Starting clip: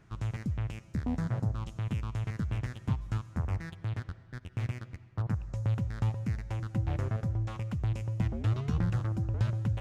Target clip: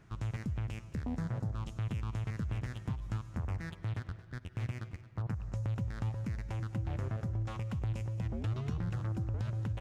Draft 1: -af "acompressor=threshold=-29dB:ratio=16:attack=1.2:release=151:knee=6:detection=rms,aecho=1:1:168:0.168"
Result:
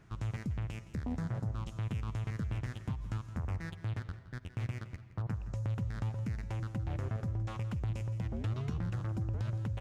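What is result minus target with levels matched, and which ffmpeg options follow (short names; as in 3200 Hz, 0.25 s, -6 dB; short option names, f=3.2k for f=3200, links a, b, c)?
echo 56 ms early
-af "acompressor=threshold=-29dB:ratio=16:attack=1.2:release=151:knee=6:detection=rms,aecho=1:1:224:0.168"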